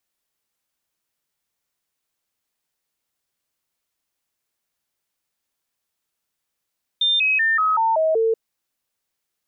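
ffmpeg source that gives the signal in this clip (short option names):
-f lavfi -i "aevalsrc='0.168*clip(min(mod(t,0.19),0.19-mod(t,0.19))/0.005,0,1)*sin(2*PI*3600*pow(2,-floor(t/0.19)/2)*mod(t,0.19))':d=1.33:s=44100"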